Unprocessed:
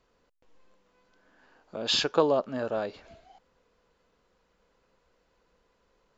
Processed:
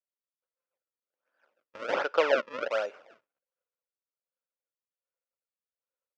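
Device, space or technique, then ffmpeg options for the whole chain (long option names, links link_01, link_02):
circuit-bent sampling toy: -filter_complex "[0:a]acrusher=samples=34:mix=1:aa=0.000001:lfo=1:lforange=54.4:lforate=1.3,highpass=510,equalizer=frequency=550:width_type=q:width=4:gain=10,equalizer=frequency=1400:width_type=q:width=4:gain=10,equalizer=frequency=2500:width_type=q:width=4:gain=5,equalizer=frequency=4100:width_type=q:width=4:gain=-6,lowpass=frequency=5200:width=0.5412,lowpass=frequency=5200:width=1.3066,asettb=1/sr,asplit=3[link_01][link_02][link_03];[link_01]atrim=end=1.934[link_04];[link_02]atrim=start=1.93:end=2.71,asetpts=PTS-STARTPTS,afade=type=in:duration=0.004:curve=qsin,afade=type=out:start_time=0.776:duration=0.004:curve=qsin,lowpass=5700[link_05];[link_03]atrim=start=2.706[link_06];[link_04][link_05]acrossfade=duration=0.004:curve1=hsin:curve2=qsin[link_07];[link_07][link_06]acrossfade=duration=0.004:curve1=qsin:curve2=hsin,agate=range=-33dB:threshold=-50dB:ratio=3:detection=peak,volume=-3.5dB"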